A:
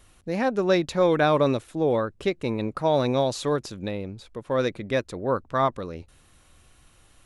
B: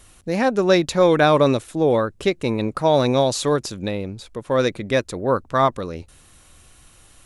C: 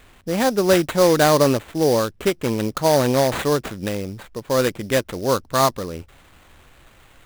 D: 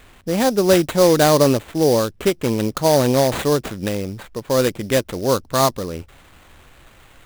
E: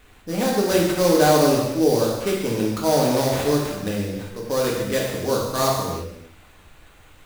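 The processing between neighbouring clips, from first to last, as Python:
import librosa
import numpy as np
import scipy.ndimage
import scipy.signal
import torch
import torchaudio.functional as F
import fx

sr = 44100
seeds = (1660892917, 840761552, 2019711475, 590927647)

y1 = fx.peak_eq(x, sr, hz=8700.0, db=5.5, octaves=1.6)
y1 = F.gain(torch.from_numpy(y1), 5.0).numpy()
y2 = fx.sample_hold(y1, sr, seeds[0], rate_hz=5400.0, jitter_pct=20)
y3 = fx.dynamic_eq(y2, sr, hz=1500.0, q=0.79, threshold_db=-31.0, ratio=4.0, max_db=-4)
y3 = F.gain(torch.from_numpy(y3), 2.5).numpy()
y4 = fx.rev_gated(y3, sr, seeds[1], gate_ms=380, shape='falling', drr_db=-4.0)
y4 = F.gain(torch.from_numpy(y4), -8.0).numpy()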